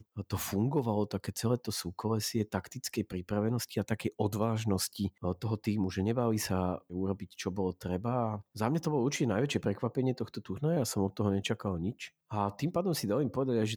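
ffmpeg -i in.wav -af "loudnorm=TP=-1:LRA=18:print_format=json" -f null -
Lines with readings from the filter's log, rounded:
"input_i" : "-33.1",
"input_tp" : "-15.3",
"input_lra" : "1.2",
"input_thresh" : "-43.2",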